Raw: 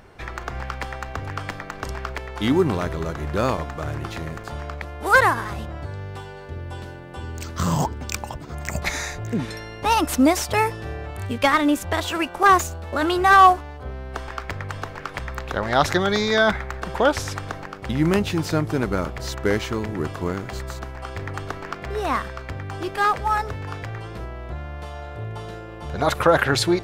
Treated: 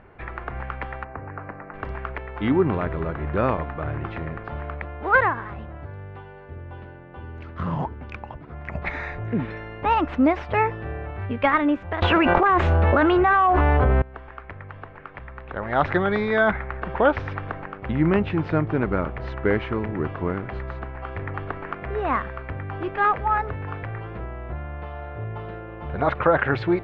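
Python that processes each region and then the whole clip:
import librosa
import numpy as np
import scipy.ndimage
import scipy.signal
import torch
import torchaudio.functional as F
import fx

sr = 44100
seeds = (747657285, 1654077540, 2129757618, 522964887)

y = fx.chain(x, sr, fx.cvsd(bps=32000),
    fx.moving_average(points=13),
    fx.low_shelf(hz=81.0, db=-11.5), at=(1.04, 1.74))
y = fx.chain(y, sr, fx.resample_bad(factor=3, down='none', up='hold'),
    fx.env_flatten(amount_pct=100), at=(12.02, 14.02))
y = scipy.signal.sosfilt(scipy.signal.butter(4, 2500.0, 'lowpass', fs=sr, output='sos'), y)
y = fx.rider(y, sr, range_db=4, speed_s=0.5)
y = F.gain(torch.from_numpy(y), -4.0).numpy()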